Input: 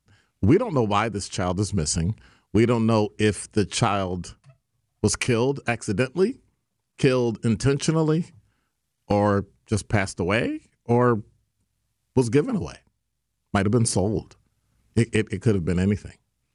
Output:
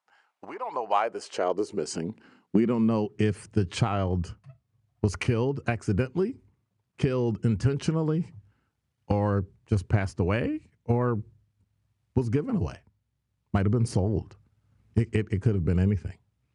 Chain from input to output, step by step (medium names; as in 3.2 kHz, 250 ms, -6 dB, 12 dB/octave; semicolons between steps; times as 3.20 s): low-pass 2 kHz 6 dB/octave; compression 6:1, threshold -23 dBFS, peak gain reduction 10 dB; high-pass sweep 830 Hz -> 82 Hz, 0.65–3.79 s